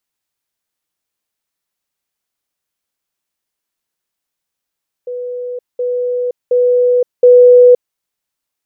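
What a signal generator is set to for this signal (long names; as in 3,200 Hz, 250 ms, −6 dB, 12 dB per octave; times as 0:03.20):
level staircase 493 Hz −20 dBFS, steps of 6 dB, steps 4, 0.52 s 0.20 s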